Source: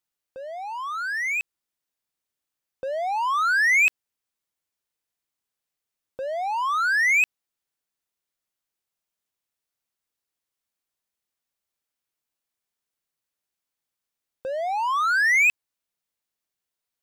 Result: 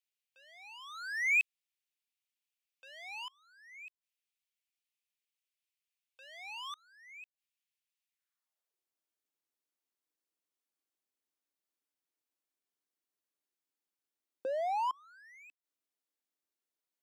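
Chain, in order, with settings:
gate with flip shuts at −19 dBFS, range −30 dB
high-pass filter sweep 2,500 Hz → 290 Hz, 0:08.08–0:08.85
level −8 dB

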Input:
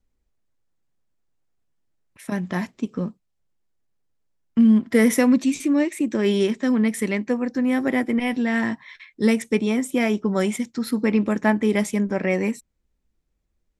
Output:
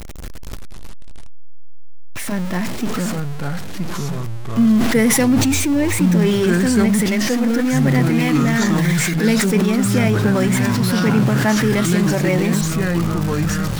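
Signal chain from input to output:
converter with a step at zero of −24.5 dBFS
delay with pitch and tempo change per echo 236 ms, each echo −4 semitones, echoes 3
level that may fall only so fast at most 25 dB per second

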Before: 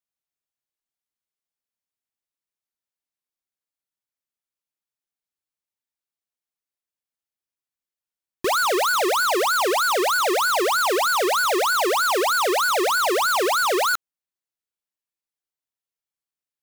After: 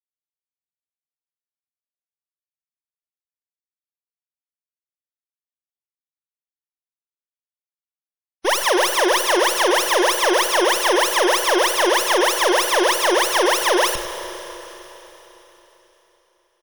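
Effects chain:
lower of the sound and its delayed copy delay 0.31 ms
downward expander −20 dBFS
EQ curve with evenly spaced ripples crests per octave 1.2, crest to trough 8 dB
single-tap delay 99 ms −13 dB
four-comb reverb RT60 3.9 s, combs from 31 ms, DRR 9 dB
gate on every frequency bin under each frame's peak −30 dB strong
level +5 dB

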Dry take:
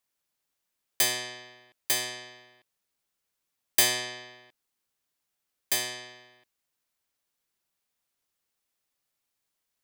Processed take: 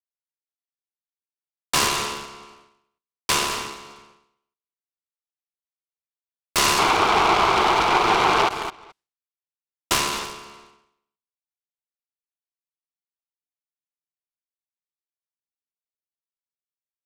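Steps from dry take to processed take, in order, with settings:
sound drawn into the spectrogram noise, 0:03.91–0:04.90, 550–4,200 Hz −19 dBFS
on a send: repeating echo 124 ms, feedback 21%, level −14.5 dB
on the sum: brickwall limiter −14.5 dBFS, peak gain reduction 7 dB
high-shelf EQ 3,900 Hz +5 dB
in parallel at −4 dB: bit reduction 5 bits
on the sum: downward expander −43 dBFS
low-pass filter 6,800 Hz 12 dB per octave
phaser with its sweep stopped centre 640 Hz, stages 8
wrong playback speed 78 rpm record played at 45 rpm
low-shelf EQ 260 Hz −10 dB
short delay modulated by noise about 1,500 Hz, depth 0.068 ms
level +6 dB

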